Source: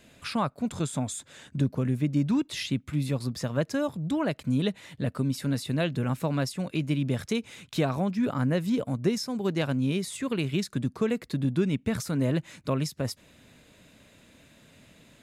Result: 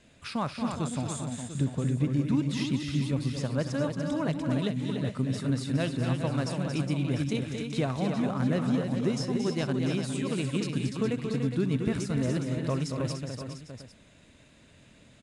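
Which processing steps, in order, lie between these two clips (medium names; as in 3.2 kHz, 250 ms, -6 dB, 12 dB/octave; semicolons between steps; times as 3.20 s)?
bass shelf 110 Hz +5 dB; multi-tap echo 65/228/292/413/695/800 ms -19/-7/-6.5/-9/-11/-16.5 dB; trim -4 dB; IMA ADPCM 88 kbps 22.05 kHz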